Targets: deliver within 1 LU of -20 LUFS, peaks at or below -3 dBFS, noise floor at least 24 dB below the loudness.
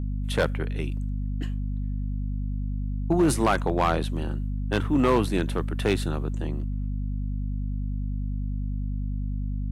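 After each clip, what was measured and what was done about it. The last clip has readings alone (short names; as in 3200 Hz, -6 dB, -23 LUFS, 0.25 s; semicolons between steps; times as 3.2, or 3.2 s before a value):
clipped 0.5%; flat tops at -14.5 dBFS; hum 50 Hz; harmonics up to 250 Hz; hum level -26 dBFS; loudness -28.0 LUFS; peak -14.5 dBFS; loudness target -20.0 LUFS
-> clip repair -14.5 dBFS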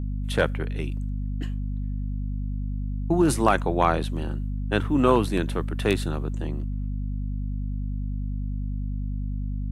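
clipped 0.0%; hum 50 Hz; harmonics up to 250 Hz; hum level -26 dBFS
-> de-hum 50 Hz, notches 5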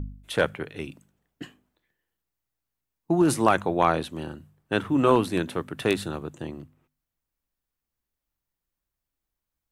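hum none; loudness -25.0 LUFS; peak -5.0 dBFS; loudness target -20.0 LUFS
-> gain +5 dB; limiter -3 dBFS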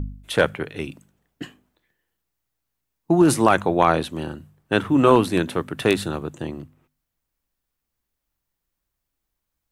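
loudness -20.5 LUFS; peak -3.0 dBFS; noise floor -81 dBFS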